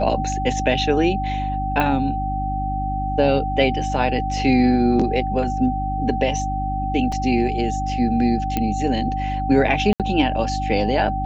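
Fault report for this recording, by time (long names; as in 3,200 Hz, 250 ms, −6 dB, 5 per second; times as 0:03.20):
mains hum 50 Hz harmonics 6 −26 dBFS
whistle 770 Hz −24 dBFS
0:01.80: click −9 dBFS
0:07.12: drop-out 3.7 ms
0:08.57: click −8 dBFS
0:09.93–0:10.00: drop-out 67 ms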